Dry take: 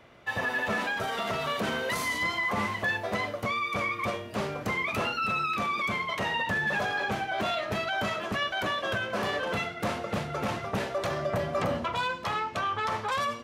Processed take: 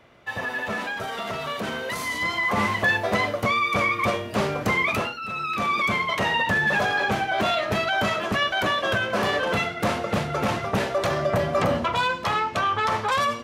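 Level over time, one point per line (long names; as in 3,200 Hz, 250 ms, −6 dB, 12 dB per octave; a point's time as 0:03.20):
0:01.97 +0.5 dB
0:02.72 +7.5 dB
0:04.92 +7.5 dB
0:05.19 −5 dB
0:05.71 +6.5 dB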